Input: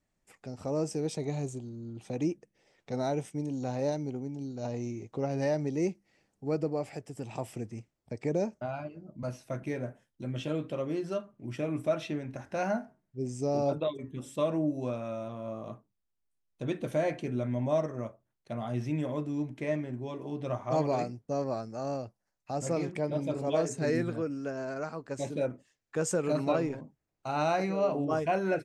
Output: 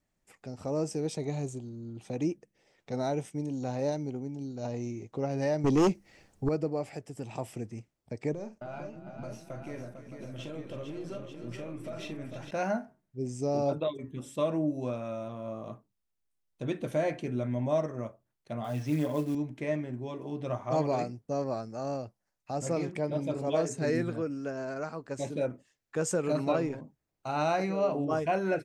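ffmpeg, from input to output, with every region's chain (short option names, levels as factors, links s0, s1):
-filter_complex "[0:a]asettb=1/sr,asplit=3[s0][s1][s2];[s0]atrim=end=5.644[s3];[s1]atrim=start=5.64:end=6.49,asetpts=PTS-STARTPTS,afade=t=in:d=0.004:c=qsin,afade=t=out:st=0.846:d=0.004:c=qsin,aeval=exprs='0.112*sin(PI/2*2.24*val(0)/0.112)':c=same,asubboost=boost=10.5:cutoff=96[s4];[s2]atrim=start=6.486[s5];[s3][s4]acrossfade=d=0.004:c1=hsin:c2=qsin[s6];[s6][s5]acrossfade=d=0.004:c1=qsin:c2=hsin,asettb=1/sr,asplit=3[s7][s8][s9];[s7]atrim=end=8.334[s10];[s8]atrim=start=8.33:end=12.51,asetpts=PTS-STARTPTS,afade=t=in:d=0.004:c=qsin,afade=t=out:st=4.176:d=0.004:c=qsin,aeval=exprs='if(lt(val(0),0),0.708*val(0),val(0))':c=same,acompressor=threshold=0.0141:ratio=5:attack=3.2:release=140:knee=1:detection=peak,aecho=1:1:42|313|450|726|888:0.335|0.224|0.447|0.126|0.376,atrim=end_sample=184338[s11];[s9]atrim=start=12.506[s12];[s10][s11]acrossfade=d=0.004:c1=hsin:c2=qsin[s13];[s13][s12]acrossfade=d=0.004:c1=qsin:c2=hsin,asettb=1/sr,asplit=3[s14][s15][s16];[s14]atrim=end=18.644[s17];[s15]atrim=start=18.64:end=19.35,asetpts=PTS-STARTPTS,afade=t=in:d=0.004:c=qsin,afade=t=out:st=0.706:d=0.004:c=qsin,highpass=f=160:p=1,aecho=1:1:6.9:0.79,atrim=end_sample=31311,acrusher=bits=6:mode=log:mix=0:aa=0.000001[s18];[s16]atrim=start=19.346[s19];[s17][s18]acrossfade=d=0.004:c1=hsin:c2=qsin[s20];[s20][s19]acrossfade=d=0.004:c1=qsin:c2=hsin"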